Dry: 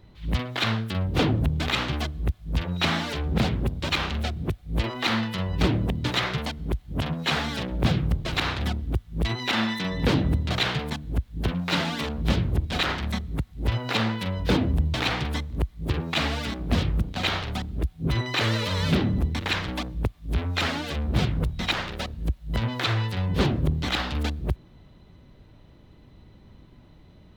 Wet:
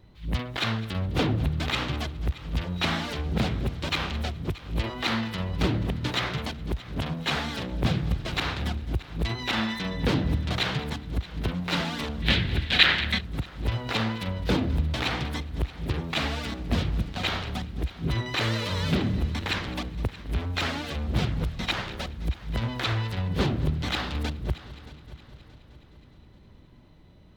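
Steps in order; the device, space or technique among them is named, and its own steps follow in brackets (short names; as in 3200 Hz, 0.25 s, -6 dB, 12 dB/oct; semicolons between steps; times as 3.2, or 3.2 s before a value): multi-head tape echo (multi-head echo 0.209 s, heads first and third, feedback 54%, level -18.5 dB; wow and flutter 13 cents); 12.22–13.21 band shelf 2600 Hz +12 dB; gain -2.5 dB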